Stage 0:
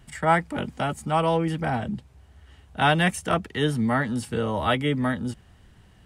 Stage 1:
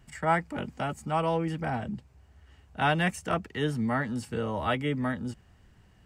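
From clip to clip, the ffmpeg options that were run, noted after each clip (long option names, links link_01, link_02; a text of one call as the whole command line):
ffmpeg -i in.wav -af "superequalizer=13b=0.631:16b=0.562,volume=-5dB" out.wav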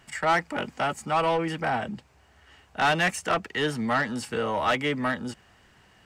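ffmpeg -i in.wav -filter_complex "[0:a]asplit=2[link_01][link_02];[link_02]highpass=frequency=720:poles=1,volume=18dB,asoftclip=type=tanh:threshold=-11.5dB[link_03];[link_01][link_03]amix=inputs=2:normalize=0,lowpass=frequency=6900:poles=1,volume=-6dB,volume=-2.5dB" out.wav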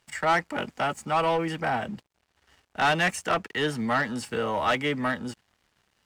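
ffmpeg -i in.wav -af "aeval=exprs='sgn(val(0))*max(abs(val(0))-0.00178,0)':channel_layout=same" out.wav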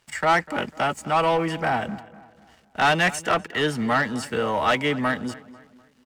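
ffmpeg -i in.wav -filter_complex "[0:a]asplit=2[link_01][link_02];[link_02]adelay=248,lowpass=frequency=2700:poles=1,volume=-18dB,asplit=2[link_03][link_04];[link_04]adelay=248,lowpass=frequency=2700:poles=1,volume=0.43,asplit=2[link_05][link_06];[link_06]adelay=248,lowpass=frequency=2700:poles=1,volume=0.43,asplit=2[link_07][link_08];[link_08]adelay=248,lowpass=frequency=2700:poles=1,volume=0.43[link_09];[link_01][link_03][link_05][link_07][link_09]amix=inputs=5:normalize=0,volume=3.5dB" out.wav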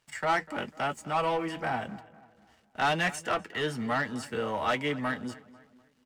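ffmpeg -i in.wav -af "flanger=delay=6.3:depth=3.4:regen=-57:speed=1:shape=triangular,volume=-3.5dB" out.wav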